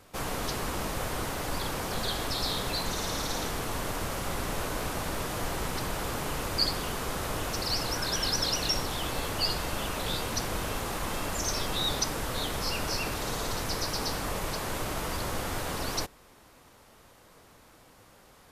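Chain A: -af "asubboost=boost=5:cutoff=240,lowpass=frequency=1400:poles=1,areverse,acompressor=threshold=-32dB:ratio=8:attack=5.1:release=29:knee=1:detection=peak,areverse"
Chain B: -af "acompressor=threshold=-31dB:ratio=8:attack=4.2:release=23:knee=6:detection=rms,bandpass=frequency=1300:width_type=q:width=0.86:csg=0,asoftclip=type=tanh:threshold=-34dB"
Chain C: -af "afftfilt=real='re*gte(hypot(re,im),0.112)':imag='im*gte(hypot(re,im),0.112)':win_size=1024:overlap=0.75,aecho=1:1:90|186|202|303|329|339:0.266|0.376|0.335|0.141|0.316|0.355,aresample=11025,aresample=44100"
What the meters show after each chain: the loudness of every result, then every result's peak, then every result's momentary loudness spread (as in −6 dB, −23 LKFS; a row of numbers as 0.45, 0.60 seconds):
−37.5, −41.5, −38.0 LKFS; −23.0, −34.5, −14.5 dBFS; 15, 20, 12 LU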